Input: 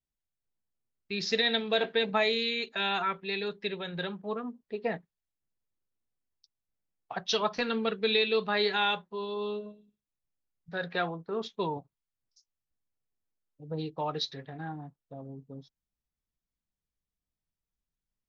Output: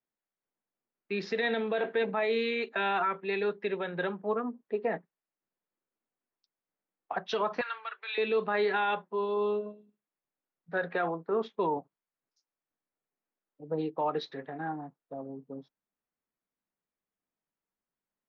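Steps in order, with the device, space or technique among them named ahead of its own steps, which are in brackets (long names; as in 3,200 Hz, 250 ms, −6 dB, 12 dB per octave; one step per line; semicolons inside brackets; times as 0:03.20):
DJ mixer with the lows and highs turned down (three-way crossover with the lows and the highs turned down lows −23 dB, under 200 Hz, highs −21 dB, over 2,300 Hz; brickwall limiter −26 dBFS, peak gain reduction 10.5 dB)
0:07.61–0:08.18: high-pass filter 1,000 Hz 24 dB per octave
level +5.5 dB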